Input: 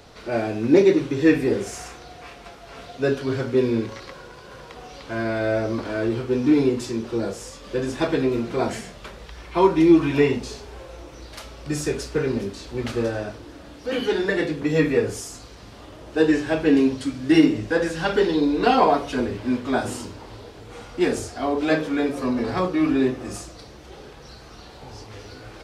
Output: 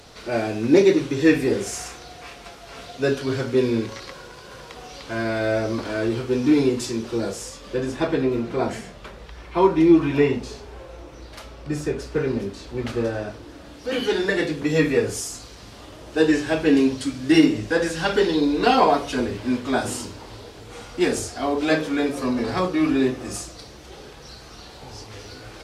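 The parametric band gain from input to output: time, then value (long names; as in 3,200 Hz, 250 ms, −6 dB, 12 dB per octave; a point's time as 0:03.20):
parametric band 9,500 Hz 2.8 octaves
0:07.34 +6 dB
0:08.02 −4 dB
0:11.45 −4 dB
0:11.95 −10.5 dB
0:12.17 −3 dB
0:13.03 −3 dB
0:14.13 +5.5 dB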